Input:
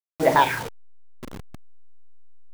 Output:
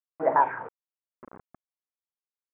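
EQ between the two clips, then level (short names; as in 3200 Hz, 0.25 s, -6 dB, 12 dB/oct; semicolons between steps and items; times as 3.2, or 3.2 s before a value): HPF 860 Hz 6 dB/oct; inverse Chebyshev low-pass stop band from 4600 Hz, stop band 60 dB; 0.0 dB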